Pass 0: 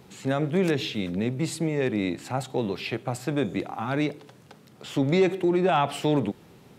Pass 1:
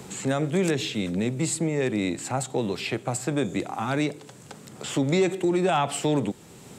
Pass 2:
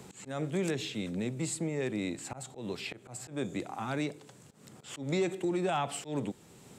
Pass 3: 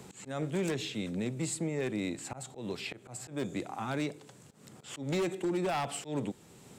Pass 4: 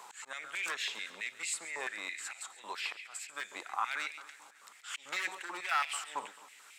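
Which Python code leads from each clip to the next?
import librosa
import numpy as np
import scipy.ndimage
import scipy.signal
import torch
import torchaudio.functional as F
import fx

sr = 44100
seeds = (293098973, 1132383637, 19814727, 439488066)

y1 = fx.peak_eq(x, sr, hz=7700.0, db=13.5, octaves=0.57)
y1 = fx.band_squash(y1, sr, depth_pct=40)
y2 = fx.auto_swell(y1, sr, attack_ms=142.0)
y2 = y2 * 10.0 ** (-8.0 / 20.0)
y3 = 10.0 ** (-25.5 / 20.0) * (np.abs((y2 / 10.0 ** (-25.5 / 20.0) + 3.0) % 4.0 - 2.0) - 1.0)
y4 = fx.echo_feedback(y3, sr, ms=137, feedback_pct=57, wet_db=-15.0)
y4 = fx.filter_held_highpass(y4, sr, hz=9.1, low_hz=970.0, high_hz=2300.0)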